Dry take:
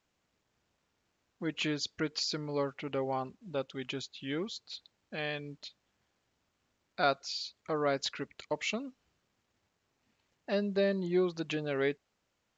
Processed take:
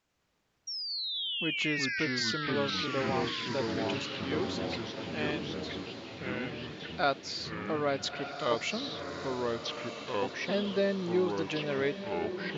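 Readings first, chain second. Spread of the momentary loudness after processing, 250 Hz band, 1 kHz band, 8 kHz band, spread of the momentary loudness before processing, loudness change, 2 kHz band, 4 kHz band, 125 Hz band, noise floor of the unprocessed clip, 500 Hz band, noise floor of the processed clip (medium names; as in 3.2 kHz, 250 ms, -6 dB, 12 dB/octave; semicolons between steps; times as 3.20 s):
8 LU, +3.0 dB, +3.5 dB, no reading, 14 LU, +2.0 dB, +6.0 dB, +5.5 dB, +3.5 dB, -80 dBFS, +2.0 dB, -75 dBFS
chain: painted sound fall, 0.67–2.00 s, 1.5–5.7 kHz -37 dBFS; ever faster or slower copies 98 ms, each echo -3 st, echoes 3; echo that smears into a reverb 1292 ms, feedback 44%, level -8.5 dB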